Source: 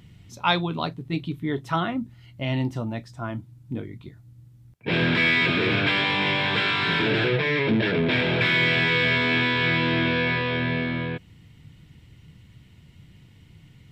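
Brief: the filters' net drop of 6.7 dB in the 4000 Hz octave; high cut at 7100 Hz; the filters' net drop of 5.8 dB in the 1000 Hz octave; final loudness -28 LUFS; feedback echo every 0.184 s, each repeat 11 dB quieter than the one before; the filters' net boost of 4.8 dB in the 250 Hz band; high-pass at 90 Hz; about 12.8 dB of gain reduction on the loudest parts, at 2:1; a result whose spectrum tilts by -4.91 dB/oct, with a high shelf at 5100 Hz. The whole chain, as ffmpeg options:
-af "highpass=90,lowpass=7.1k,equalizer=f=250:t=o:g=6.5,equalizer=f=1k:t=o:g=-7,equalizer=f=4k:t=o:g=-5,highshelf=f=5.1k:g=-8,acompressor=threshold=-38dB:ratio=2,aecho=1:1:184|368|552:0.282|0.0789|0.0221,volume=5.5dB"

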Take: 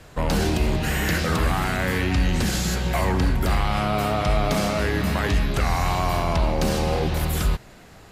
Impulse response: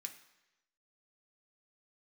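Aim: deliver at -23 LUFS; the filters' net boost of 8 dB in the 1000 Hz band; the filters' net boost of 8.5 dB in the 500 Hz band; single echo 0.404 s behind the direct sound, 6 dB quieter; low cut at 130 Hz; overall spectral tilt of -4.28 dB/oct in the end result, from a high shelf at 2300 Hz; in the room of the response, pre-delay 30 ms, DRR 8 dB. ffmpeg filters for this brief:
-filter_complex "[0:a]highpass=130,equalizer=f=500:t=o:g=8.5,equalizer=f=1k:t=o:g=6,highshelf=f=2.3k:g=7.5,aecho=1:1:404:0.501,asplit=2[a][b];[1:a]atrim=start_sample=2205,adelay=30[c];[b][c]afir=irnorm=-1:irlink=0,volume=-4dB[d];[a][d]amix=inputs=2:normalize=0,volume=-5.5dB"

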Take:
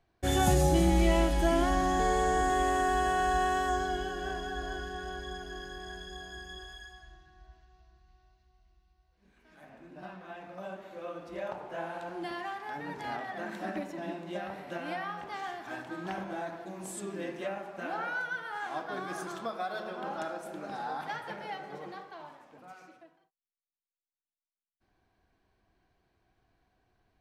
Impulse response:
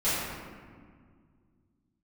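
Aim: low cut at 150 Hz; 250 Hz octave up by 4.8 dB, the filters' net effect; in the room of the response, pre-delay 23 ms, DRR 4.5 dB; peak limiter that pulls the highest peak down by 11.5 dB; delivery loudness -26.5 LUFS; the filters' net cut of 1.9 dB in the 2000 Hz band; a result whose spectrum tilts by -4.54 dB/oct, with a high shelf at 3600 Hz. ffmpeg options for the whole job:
-filter_complex "[0:a]highpass=150,equalizer=f=250:t=o:g=8,equalizer=f=2k:t=o:g=-4,highshelf=f=3.6k:g=5,alimiter=limit=-21.5dB:level=0:latency=1,asplit=2[a][b];[1:a]atrim=start_sample=2205,adelay=23[c];[b][c]afir=irnorm=-1:irlink=0,volume=-17dB[d];[a][d]amix=inputs=2:normalize=0,volume=6.5dB"

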